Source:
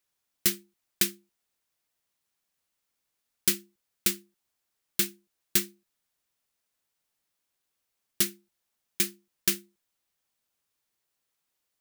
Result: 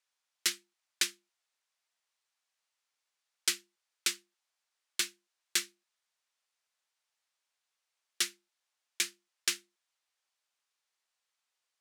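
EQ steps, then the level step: band-pass 720–7600 Hz; 0.0 dB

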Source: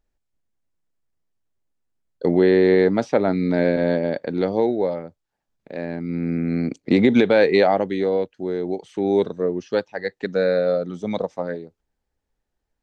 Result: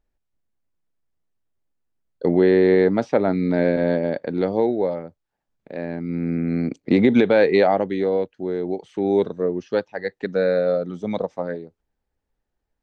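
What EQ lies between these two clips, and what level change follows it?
treble shelf 4.4 kHz -8 dB; 0.0 dB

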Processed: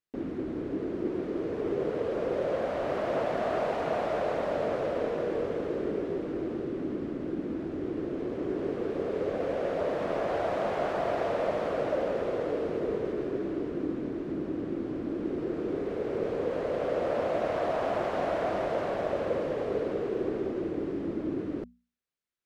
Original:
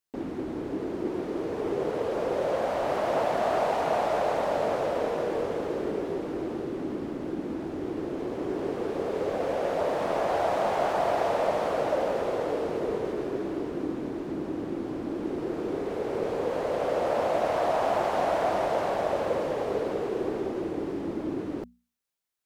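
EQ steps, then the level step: low-pass 2.4 kHz 6 dB/octave; peaking EQ 860 Hz -8 dB 0.68 oct; 0.0 dB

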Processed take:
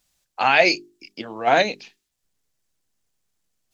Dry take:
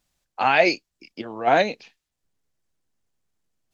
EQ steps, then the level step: treble shelf 2.5 kHz +7.5 dB; hum notches 50/100/150/200/250/300/350/400 Hz; 0.0 dB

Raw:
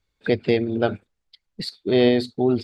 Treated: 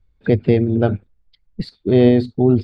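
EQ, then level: RIAA curve playback; 0.0 dB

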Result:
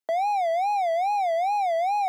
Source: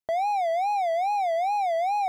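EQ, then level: steep high-pass 220 Hz; +1.0 dB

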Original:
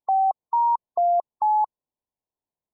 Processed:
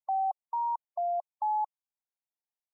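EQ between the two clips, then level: brick-wall FIR high-pass 590 Hz; static phaser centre 810 Hz, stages 8; -8.5 dB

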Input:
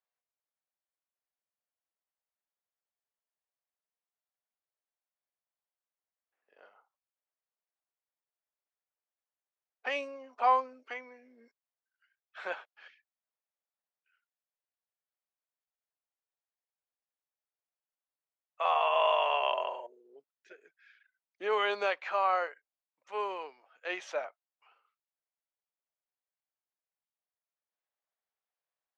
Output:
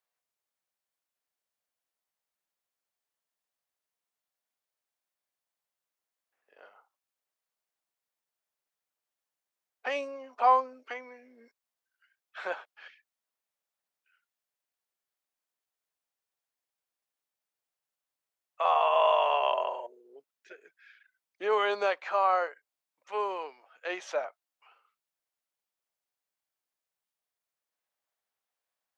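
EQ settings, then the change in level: dynamic bell 2.5 kHz, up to -6 dB, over -46 dBFS, Q 0.88; bass shelf 180 Hz -6.5 dB; +4.5 dB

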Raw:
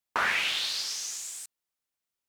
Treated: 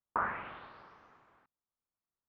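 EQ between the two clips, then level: four-pole ladder low-pass 1.4 kHz, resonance 45%; bass shelf 350 Hz +11.5 dB; 0.0 dB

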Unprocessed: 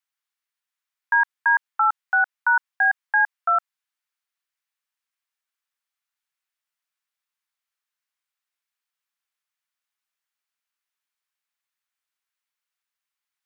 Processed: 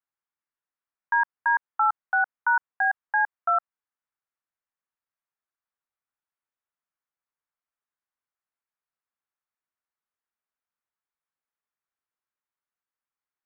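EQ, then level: low-pass 1.3 kHz 12 dB/octave; 0.0 dB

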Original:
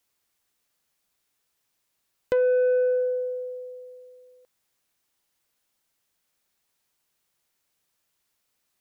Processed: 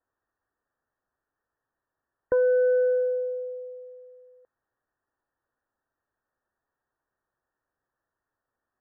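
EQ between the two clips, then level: brick-wall FIR low-pass 1.9 kHz; peaking EQ 180 Hz -8.5 dB 0.49 oct; 0.0 dB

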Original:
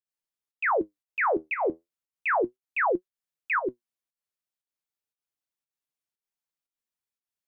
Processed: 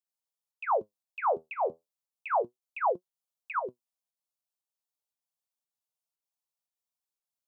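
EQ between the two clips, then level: high-pass 140 Hz; static phaser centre 760 Hz, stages 4; 0.0 dB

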